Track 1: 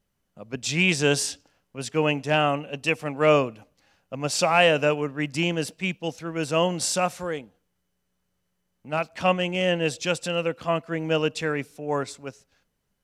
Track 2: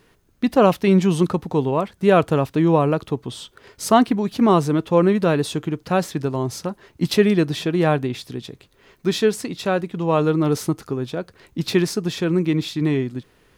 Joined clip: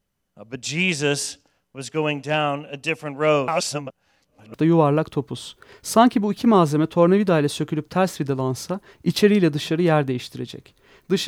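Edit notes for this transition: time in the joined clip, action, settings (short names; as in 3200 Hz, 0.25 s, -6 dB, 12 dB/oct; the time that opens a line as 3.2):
track 1
3.48–4.54 reverse
4.54 switch to track 2 from 2.49 s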